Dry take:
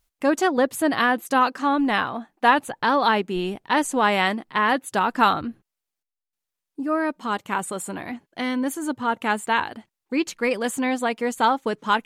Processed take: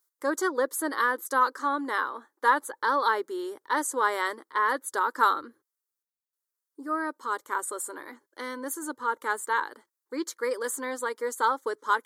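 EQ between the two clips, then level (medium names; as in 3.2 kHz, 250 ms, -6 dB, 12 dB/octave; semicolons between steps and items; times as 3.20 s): high-pass 380 Hz 12 dB/octave; treble shelf 9.5 kHz +5.5 dB; static phaser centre 710 Hz, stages 6; -2.0 dB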